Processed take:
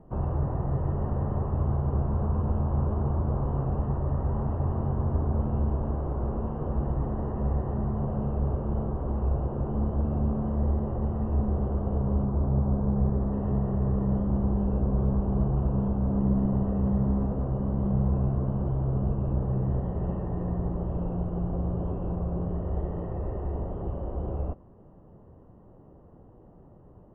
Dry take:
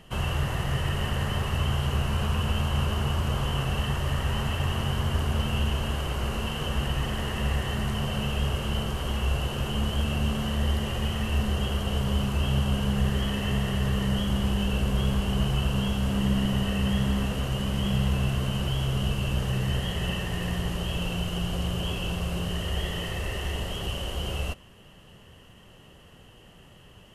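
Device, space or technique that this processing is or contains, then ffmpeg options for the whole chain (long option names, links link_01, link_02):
under water: -filter_complex "[0:a]asettb=1/sr,asplit=3[link_01][link_02][link_03];[link_01]atrim=end=12.254[link_04];[link_02]atrim=start=12.25:end=13.33,asetpts=PTS-STARTPTS,afade=type=in:duration=0.004:curve=qsin,afade=type=out:start_time=1.076:duration=0.004:curve=qsin,lowpass=1800[link_05];[link_03]atrim=start=13.326[link_06];[link_04][link_05]acrossfade=duration=0.004:curve1=hsin:curve2=qsin[link_07];[link_07][link_06]acrossfade=duration=0.004:curve1=qsin:curve2=hsin,lowpass=frequency=950:width=0.5412,lowpass=frequency=950:width=1.3066,equalizer=frequency=310:width_type=o:width=0.45:gain=5"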